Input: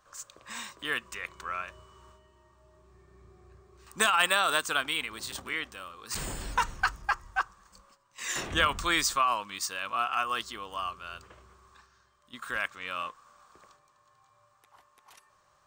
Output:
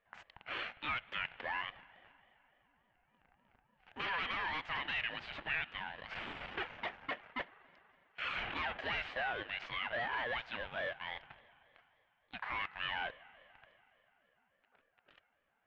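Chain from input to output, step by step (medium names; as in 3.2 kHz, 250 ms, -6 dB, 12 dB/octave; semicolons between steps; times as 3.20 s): self-modulated delay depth 0.24 ms; dynamic bell 550 Hz, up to -5 dB, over -47 dBFS, Q 1; waveshaping leveller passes 3; compression, threshold -21 dBFS, peak gain reduction 6 dB; saturation -27 dBFS, distortion -9 dB; cabinet simulation 400–2400 Hz, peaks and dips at 410 Hz -4 dB, 670 Hz -9 dB, 1 kHz -7 dB, 1.5 kHz -6 dB, 2.4 kHz +4 dB; spring tank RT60 3.2 s, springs 40 ms, chirp 50 ms, DRR 18 dB; ring modulator with a swept carrier 470 Hz, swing 30%, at 3.5 Hz; trim +1 dB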